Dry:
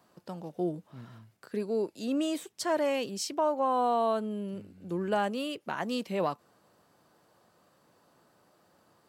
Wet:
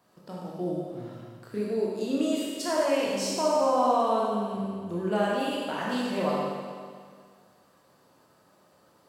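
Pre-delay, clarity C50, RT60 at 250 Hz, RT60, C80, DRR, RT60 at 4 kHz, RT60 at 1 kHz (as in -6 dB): 21 ms, -2.0 dB, 1.9 s, 1.9 s, 0.5 dB, -5.0 dB, 1.9 s, 1.9 s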